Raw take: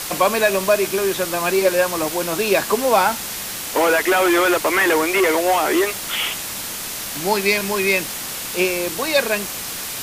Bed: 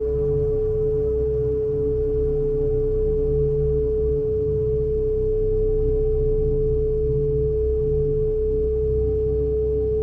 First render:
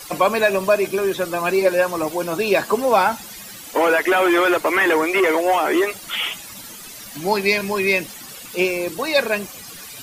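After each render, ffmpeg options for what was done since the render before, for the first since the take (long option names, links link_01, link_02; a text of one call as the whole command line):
ffmpeg -i in.wav -af "afftdn=noise_reduction=14:noise_floor=-29" out.wav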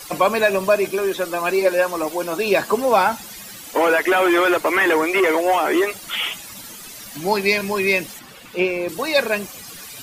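ffmpeg -i in.wav -filter_complex "[0:a]asettb=1/sr,asplit=3[link_01][link_02][link_03];[link_01]atrim=end=0.904[link_04];[link_02]atrim=start=0.9:end=2.46,asetpts=PTS-STARTPTS,afade=type=in:duration=0.004:curve=qsin,afade=type=out:start_time=1.556:duration=0.004:curve=qsin,equalizer=frequency=120:width=1.5:gain=-12[link_05];[link_03]atrim=start=2.456[link_06];[link_04][link_05]acrossfade=duration=0.004:curve1=hsin:curve2=qsin[link_07];[link_07][link_06]acrossfade=duration=0.004:curve1=qsin:curve2=hsin,asettb=1/sr,asplit=3[link_08][link_09][link_10];[link_08]atrim=end=8.194[link_11];[link_09]atrim=start=8.19:end=8.89,asetpts=PTS-STARTPTS,afade=type=in:duration=0.004:curve=qsin,afade=type=out:start_time=0.696:duration=0.004:curve=qsin,acrossover=split=3600[link_12][link_13];[link_13]acompressor=threshold=-47dB:ratio=4:attack=1:release=60[link_14];[link_12][link_14]amix=inputs=2:normalize=0[link_15];[link_10]atrim=start=8.886[link_16];[link_11][link_15]acrossfade=duration=0.004:curve1=hsin:curve2=qsin[link_17];[link_17][link_16]acrossfade=duration=0.004:curve1=qsin:curve2=hsin" out.wav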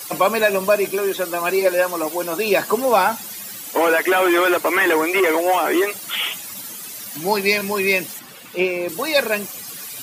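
ffmpeg -i in.wav -af "highpass=110,highshelf=frequency=9600:gain=9" out.wav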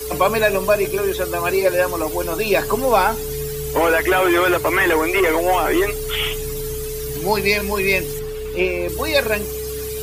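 ffmpeg -i in.wav -i bed.wav -filter_complex "[1:a]volume=-6.5dB[link_01];[0:a][link_01]amix=inputs=2:normalize=0" out.wav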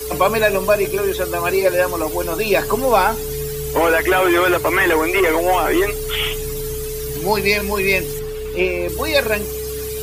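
ffmpeg -i in.wav -af "volume=1dB" out.wav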